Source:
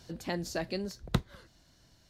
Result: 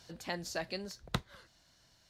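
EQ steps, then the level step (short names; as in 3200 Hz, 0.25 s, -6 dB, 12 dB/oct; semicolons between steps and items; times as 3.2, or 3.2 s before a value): low shelf 150 Hz -10 dB; bell 310 Hz -6.5 dB 1.6 oct; high shelf 12000 Hz -5 dB; 0.0 dB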